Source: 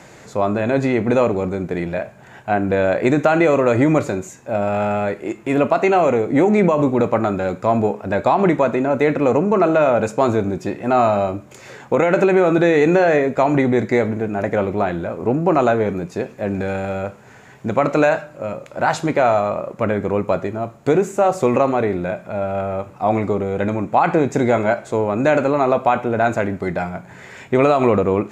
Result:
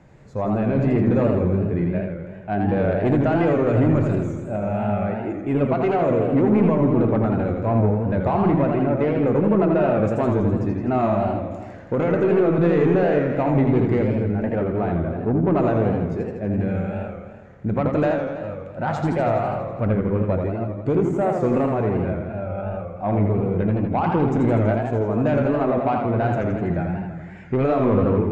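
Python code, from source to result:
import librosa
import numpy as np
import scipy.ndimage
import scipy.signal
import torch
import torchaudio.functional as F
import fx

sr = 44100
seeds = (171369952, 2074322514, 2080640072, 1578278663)

y = fx.noise_reduce_blind(x, sr, reduce_db=6)
y = fx.riaa(y, sr, side='playback')
y = 10.0 ** (-6.0 / 20.0) * np.tanh(y / 10.0 ** (-6.0 / 20.0))
y = fx.echo_warbled(y, sr, ms=82, feedback_pct=69, rate_hz=2.8, cents=146, wet_db=-4.5)
y = y * 10.0 ** (-7.5 / 20.0)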